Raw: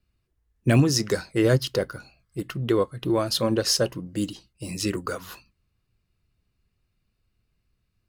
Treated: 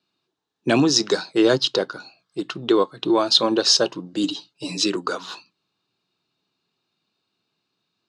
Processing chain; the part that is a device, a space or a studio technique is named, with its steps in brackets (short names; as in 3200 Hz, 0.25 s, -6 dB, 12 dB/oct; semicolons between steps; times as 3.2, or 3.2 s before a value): television speaker (speaker cabinet 200–6800 Hz, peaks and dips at 220 Hz -7 dB, 530 Hz -5 dB, 870 Hz +5 dB, 2000 Hz -9 dB, 3800 Hz +9 dB); 4.23–4.84 comb 7 ms, depth 83%; gain +6 dB